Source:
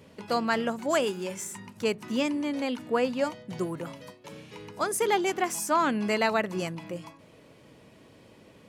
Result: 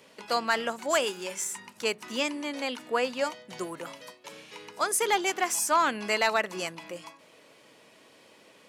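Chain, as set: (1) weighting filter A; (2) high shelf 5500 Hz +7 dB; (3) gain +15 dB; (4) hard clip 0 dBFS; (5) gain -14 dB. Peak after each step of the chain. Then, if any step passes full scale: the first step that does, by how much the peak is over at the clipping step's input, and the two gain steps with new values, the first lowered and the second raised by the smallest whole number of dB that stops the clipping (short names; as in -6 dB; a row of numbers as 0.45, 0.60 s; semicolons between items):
-11.0, -10.5, +4.5, 0.0, -14.0 dBFS; step 3, 4.5 dB; step 3 +10 dB, step 5 -9 dB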